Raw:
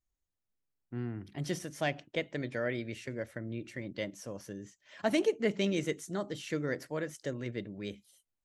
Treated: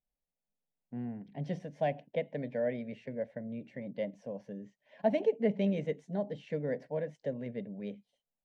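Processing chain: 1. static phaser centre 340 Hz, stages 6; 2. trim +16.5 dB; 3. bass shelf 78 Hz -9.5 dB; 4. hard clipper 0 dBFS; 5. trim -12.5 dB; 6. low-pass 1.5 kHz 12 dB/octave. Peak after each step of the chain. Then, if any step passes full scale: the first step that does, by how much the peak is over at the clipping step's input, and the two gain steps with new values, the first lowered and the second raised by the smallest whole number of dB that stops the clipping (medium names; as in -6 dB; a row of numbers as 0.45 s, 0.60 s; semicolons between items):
-18.5 dBFS, -2.0 dBFS, -2.5 dBFS, -2.5 dBFS, -15.0 dBFS, -16.0 dBFS; nothing clips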